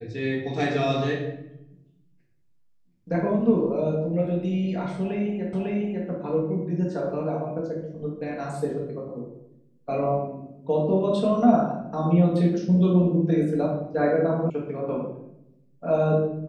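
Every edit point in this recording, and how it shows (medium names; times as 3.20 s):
5.53 s: repeat of the last 0.55 s
14.50 s: sound stops dead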